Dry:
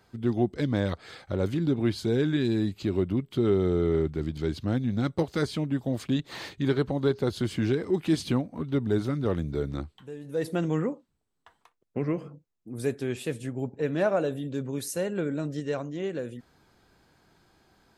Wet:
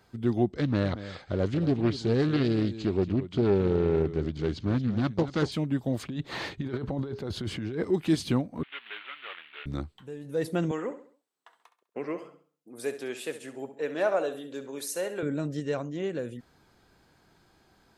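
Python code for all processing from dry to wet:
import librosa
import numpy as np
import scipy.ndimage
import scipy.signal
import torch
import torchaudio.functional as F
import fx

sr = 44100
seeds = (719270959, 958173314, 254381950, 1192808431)

y = fx.chain(x, sr, fx.lowpass(hz=7300.0, slope=24),
    fx.echo_single(ms=229, db=-13.5),
    fx.doppler_dist(depth_ms=0.37), at=(0.46, 5.52))
y = fx.chain(y, sr, fx.lowpass(hz=3100.0, slope=6),
    fx.over_compress(threshold_db=-32.0, ratio=-1.0), at=(6.03, 7.84))
y = fx.chain(y, sr, fx.cvsd(bps=16000),
    fx.highpass(hz=1300.0, slope=12),
    fx.tilt_eq(slope=4.5), at=(8.63, 9.66))
y = fx.chain(y, sr, fx.highpass(hz=420.0, slope=12),
    fx.echo_feedback(ms=67, feedback_pct=40, wet_db=-12), at=(10.71, 15.23))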